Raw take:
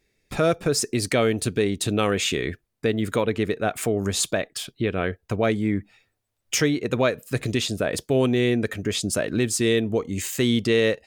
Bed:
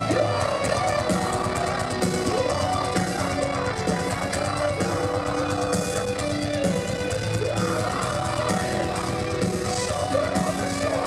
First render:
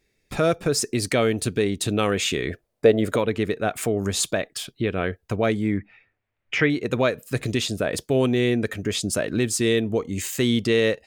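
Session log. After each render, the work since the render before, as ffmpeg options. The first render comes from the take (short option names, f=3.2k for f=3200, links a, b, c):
-filter_complex "[0:a]asettb=1/sr,asplit=3[a][b][c];[a]atrim=end=2.504[d];[b]atrim=start=2.5:end=3.16,asetpts=PTS-STARTPTS,afade=t=in:d=0.004:c=qsin,afade=t=out:st=0.656:d=0.004:c=qsin,equalizer=f=580:t=o:w=0.98:g=14[e];[c]atrim=start=3.156[f];[d][e]acrossfade=d=0.004:c1=hsin:c2=qsin[g];[g][f]acrossfade=d=0.004:c1=qsin:c2=hsin,asettb=1/sr,asplit=3[h][i][j];[h]atrim=end=5.774[k];[i]atrim=start=5.77:end=6.7,asetpts=PTS-STARTPTS,afade=t=in:d=0.004:c=qsin,afade=t=out:st=0.926:d=0.004:c=qsin,lowpass=f=2.2k:t=q:w=2.2[l];[j]atrim=start=6.696[m];[k][l]acrossfade=d=0.004:c1=hsin:c2=qsin[n];[n][m]acrossfade=d=0.004:c1=qsin:c2=hsin"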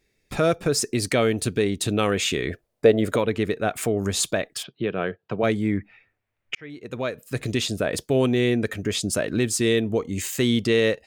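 -filter_complex "[0:a]asplit=3[a][b][c];[a]afade=t=out:st=4.62:d=0.02[d];[b]highpass=f=130:w=0.5412,highpass=f=130:w=1.3066,equalizer=f=260:t=q:w=4:g=-6,equalizer=f=2.1k:t=q:w=4:g=-6,equalizer=f=3.9k:t=q:w=4:g=-3,lowpass=f=4k:w=0.5412,lowpass=f=4k:w=1.3066,afade=t=in:st=4.62:d=0.02,afade=t=out:st=5.42:d=0.02[e];[c]afade=t=in:st=5.42:d=0.02[f];[d][e][f]amix=inputs=3:normalize=0,asplit=2[g][h];[g]atrim=end=6.55,asetpts=PTS-STARTPTS,afade=t=out:st=6.546:d=0.004:c=hsin[i];[h]atrim=start=6.55,asetpts=PTS-STARTPTS,afade=t=in:d=1.07[j];[i][j]concat=n=2:v=0:a=1"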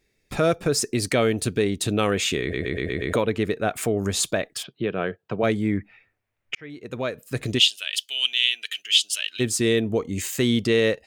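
-filter_complex "[0:a]asplit=3[a][b][c];[a]afade=t=out:st=7.58:d=0.02[d];[b]highpass=f=3k:t=q:w=10,afade=t=in:st=7.58:d=0.02,afade=t=out:st=9.39:d=0.02[e];[c]afade=t=in:st=9.39:d=0.02[f];[d][e][f]amix=inputs=3:normalize=0,asplit=7[g][h][i][j][k][l][m];[g]atrim=end=2.532[n];[h]atrim=start=2.408:end=2.532[o];[i]atrim=start=2.408:end=2.532[p];[j]atrim=start=2.408:end=2.532[q];[k]atrim=start=2.408:end=2.532[r];[l]atrim=start=2.408:end=2.532[s];[m]atrim=start=3.128[t];[n][o]acrossfade=d=0.004:c1=hsin:c2=hsin[u];[u][p]acrossfade=d=0.004:c1=hsin:c2=hsin[v];[v][q]acrossfade=d=0.004:c1=hsin:c2=hsin[w];[w][r]acrossfade=d=0.004:c1=hsin:c2=hsin[x];[x][s]acrossfade=d=0.004:c1=hsin:c2=hsin[y];[y][t]acrossfade=d=0.004:c1=hsin:c2=hsin"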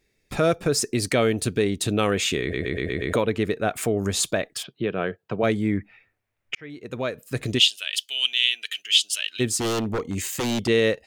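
-filter_complex "[0:a]asettb=1/sr,asplit=3[a][b][c];[a]atrim=end=9.584[d];[b]atrim=start=9.58:end=10.68,asetpts=PTS-STARTPTS,afade=t=in:d=0.004:c=qsin,afade=t=out:st=1.096:d=0.004:c=qsin,aeval=exprs='0.1*(abs(mod(val(0)/0.1+3,4)-2)-1)':c=same[e];[c]atrim=start=10.676[f];[d][e]acrossfade=d=0.004:c1=hsin:c2=qsin[g];[g][f]acrossfade=d=0.004:c1=qsin:c2=hsin"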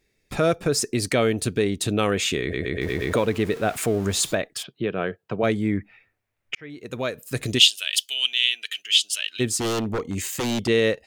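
-filter_complex "[0:a]asettb=1/sr,asplit=3[a][b][c];[a]atrim=end=2.814[d];[b]atrim=start=2.81:end=4.35,asetpts=PTS-STARTPTS,afade=t=in:d=0.004:c=qsin,afade=t=out:st=1.536:d=0.004:c=qsin,aeval=exprs='val(0)+0.5*0.0178*sgn(val(0))':c=same[e];[c]atrim=start=4.346[f];[d][e]acrossfade=d=0.004:c1=hsin:c2=qsin[g];[g][f]acrossfade=d=0.004:c1=qsin:c2=hsin,asettb=1/sr,asplit=3[h][i][j];[h]atrim=end=6.784[k];[i]atrim=start=6.78:end=8.14,asetpts=PTS-STARTPTS,afade=t=in:d=0.004:c=qsin,afade=t=out:st=1.356:d=0.004:c=qsin,highshelf=f=4.1k:g=7.5[l];[j]atrim=start=8.136[m];[k][l]acrossfade=d=0.004:c1=hsin:c2=qsin[n];[n][m]acrossfade=d=0.004:c1=qsin:c2=hsin"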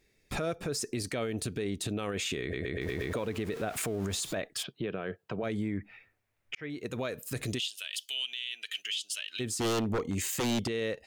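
-af "acompressor=threshold=-25dB:ratio=12,alimiter=level_in=0.5dB:limit=-24dB:level=0:latency=1:release=43,volume=-0.5dB"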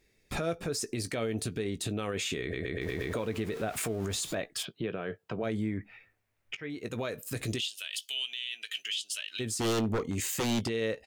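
-filter_complex "[0:a]asplit=2[a][b];[b]adelay=18,volume=-11.5dB[c];[a][c]amix=inputs=2:normalize=0"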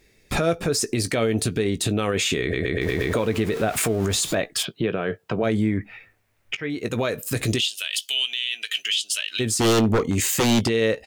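-af "volume=10.5dB"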